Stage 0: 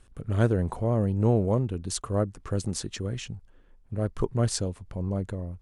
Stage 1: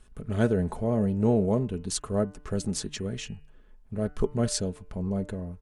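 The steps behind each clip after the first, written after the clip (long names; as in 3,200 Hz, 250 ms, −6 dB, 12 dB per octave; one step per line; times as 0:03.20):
comb filter 4.7 ms, depth 45%
hum removal 148.5 Hz, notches 20
dynamic equaliser 1,100 Hz, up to −5 dB, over −50 dBFS, Q 2.9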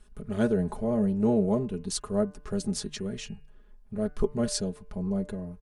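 comb filter 4.9 ms, depth 53%
level −2.5 dB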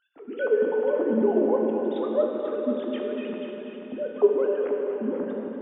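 three sine waves on the formant tracks
on a send: echo machine with several playback heads 244 ms, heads first and second, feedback 42%, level −10.5 dB
on the sum: dense smooth reverb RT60 3.9 s, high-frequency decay 0.95×, DRR 0.5 dB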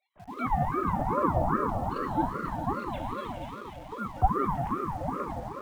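in parallel at −8 dB: bit reduction 7 bits
on the sum: ring modulator whose carrier an LFO sweeps 550 Hz, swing 50%, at 2.5 Hz
level −4.5 dB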